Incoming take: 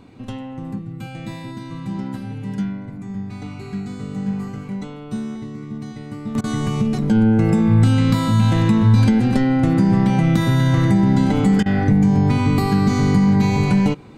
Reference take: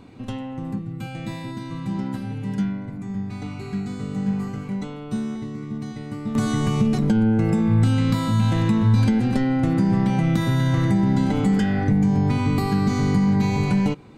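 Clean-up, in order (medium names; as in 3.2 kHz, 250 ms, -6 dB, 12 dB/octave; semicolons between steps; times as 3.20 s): interpolate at 6.41/11.63 s, 28 ms; trim 0 dB, from 7.11 s -4 dB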